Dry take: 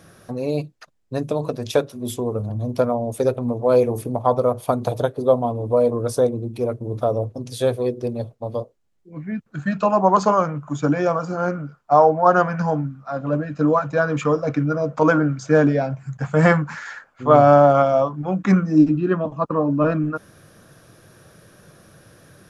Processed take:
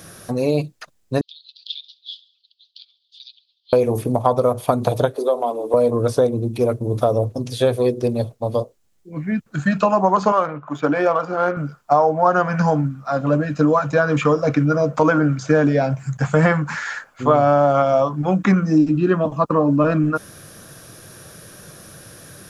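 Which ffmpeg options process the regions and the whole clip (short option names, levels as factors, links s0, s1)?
-filter_complex "[0:a]asettb=1/sr,asplit=3[s0][s1][s2];[s0]atrim=end=1.214[s3];[s1]atrim=start=1.21:end=3.73,asetpts=PTS-STARTPTS,afade=t=in:d=0.004:c=qsin,afade=t=out:st=2.516:d=0.004:c=qsin,asuperpass=centerf=3800:order=8:qfactor=2.3,aecho=1:1:68|136|204:0.0708|0.0354|0.0177,atrim=end_sample=111132[s4];[s2]atrim=start=3.726[s5];[s3][s4]acrossfade=d=0.004:c1=hsin:c2=qsin[s6];[s6][s5]acrossfade=d=0.004:c1=qsin:c2=hsin,asettb=1/sr,asplit=3[s7][s8][s9];[s7]atrim=end=5.164[s10];[s8]atrim=start=5.16:end=5.74,asetpts=PTS-STARTPTS,afade=t=in:d=0.004:c=qsin,afade=t=out:st=0.576:d=0.004:c=qsin,highpass=f=310:w=0.5412,highpass=f=310:w=1.3066,bandreject=f=50:t=h:w=6,bandreject=f=100:t=h:w=6,bandreject=f=150:t=h:w=6,bandreject=f=200:t=h:w=6,bandreject=f=250:t=h:w=6,bandreject=f=300:t=h:w=6,bandreject=f=350:t=h:w=6,bandreject=f=400:t=h:w=6,bandreject=f=450:t=h:w=6,acompressor=threshold=0.0708:ratio=2:attack=3.2:release=140:knee=1:detection=peak[s11];[s9]atrim=start=5.736[s12];[s10][s11]acrossfade=d=0.004:c1=hsin:c2=qsin[s13];[s13][s12]acrossfade=d=0.004:c1=qsin:c2=hsin,asettb=1/sr,asplit=3[s14][s15][s16];[s14]atrim=end=10.324[s17];[s15]atrim=start=10.32:end=11.57,asetpts=PTS-STARTPTS,afade=t=in:d=0.004:c=qsin,afade=t=out:st=1.246:d=0.004:c=qsin,adynamicsmooth=sensitivity=3.5:basefreq=3500,bass=f=250:g=-14,treble=f=4000:g=-12[s18];[s16]atrim=start=11.566[s19];[s17][s18]acrossfade=d=0.004:c1=hsin:c2=qsin[s20];[s20][s19]acrossfade=d=0.004:c1=qsin:c2=hsin,acrossover=split=3600[s21][s22];[s22]acompressor=threshold=0.00282:ratio=4:attack=1:release=60[s23];[s21][s23]amix=inputs=2:normalize=0,highshelf=f=3900:g=10,acompressor=threshold=0.126:ratio=4,volume=1.88"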